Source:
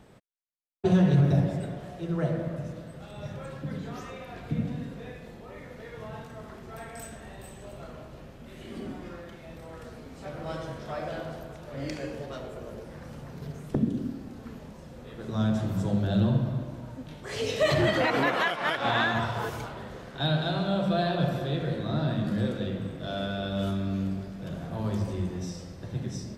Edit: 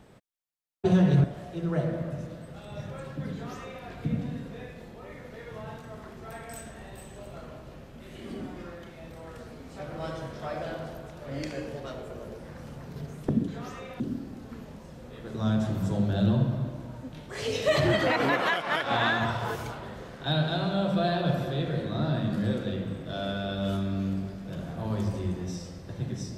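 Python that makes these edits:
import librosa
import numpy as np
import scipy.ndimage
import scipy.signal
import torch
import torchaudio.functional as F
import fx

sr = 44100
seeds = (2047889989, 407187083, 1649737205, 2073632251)

y = fx.edit(x, sr, fx.cut(start_s=1.24, length_s=0.46),
    fx.duplicate(start_s=3.79, length_s=0.52, to_s=13.94), tone=tone)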